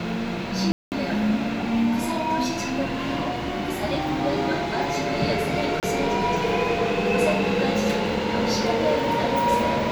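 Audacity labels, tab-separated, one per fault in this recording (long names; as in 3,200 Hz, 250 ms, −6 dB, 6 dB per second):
0.720000	0.920000	drop-out 199 ms
5.800000	5.830000	drop-out 28 ms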